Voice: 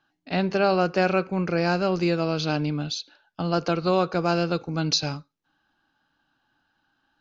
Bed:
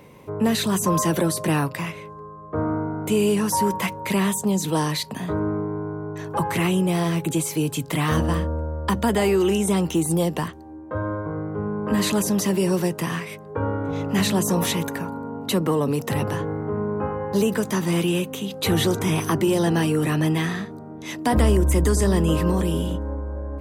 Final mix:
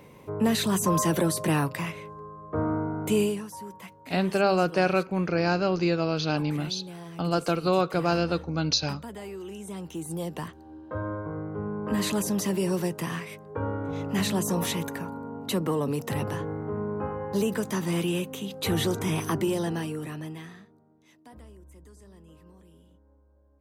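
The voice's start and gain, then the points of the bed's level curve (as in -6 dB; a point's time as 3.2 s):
3.80 s, -1.5 dB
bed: 3.21 s -3 dB
3.51 s -19.5 dB
9.49 s -19.5 dB
10.71 s -5.5 dB
19.42 s -5.5 dB
21.53 s -32.5 dB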